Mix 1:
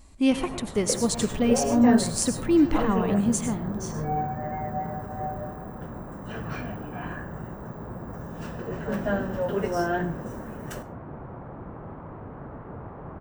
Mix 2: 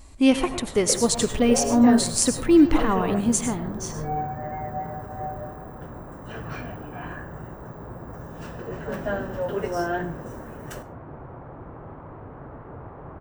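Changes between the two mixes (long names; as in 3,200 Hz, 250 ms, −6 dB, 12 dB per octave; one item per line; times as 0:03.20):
speech +5.0 dB
master: add parametric band 200 Hz −7 dB 0.39 octaves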